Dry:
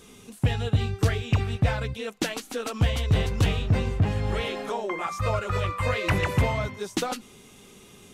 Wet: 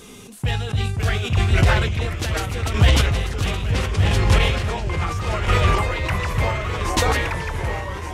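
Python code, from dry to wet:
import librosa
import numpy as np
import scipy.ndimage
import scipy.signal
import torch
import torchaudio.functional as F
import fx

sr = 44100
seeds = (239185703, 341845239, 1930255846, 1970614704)

p1 = fx.dynamic_eq(x, sr, hz=310.0, q=0.77, threshold_db=-39.0, ratio=4.0, max_db=-7)
p2 = fx.echo_pitch(p1, sr, ms=477, semitones=-2, count=3, db_per_echo=-3.0)
p3 = fx.chopper(p2, sr, hz=0.73, depth_pct=60, duty_pct=20)
p4 = p3 + fx.echo_single(p3, sr, ms=1168, db=-10.0, dry=0)
p5 = fx.sustainer(p4, sr, db_per_s=39.0)
y = p5 * librosa.db_to_amplitude(8.0)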